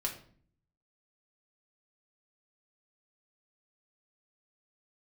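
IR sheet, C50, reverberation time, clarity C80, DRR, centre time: 9.5 dB, 0.50 s, 13.5 dB, -1.0 dB, 17 ms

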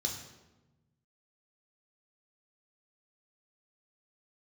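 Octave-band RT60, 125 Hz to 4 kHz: 1.9, 1.6, 1.2, 1.0, 0.85, 0.75 s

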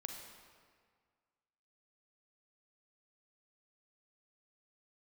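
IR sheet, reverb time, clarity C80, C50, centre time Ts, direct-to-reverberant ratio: 1.8 s, 5.0 dB, 3.5 dB, 56 ms, 3.0 dB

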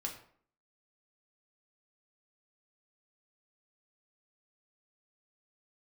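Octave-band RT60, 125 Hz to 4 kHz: 0.50, 0.65, 0.55, 0.55, 0.45, 0.35 s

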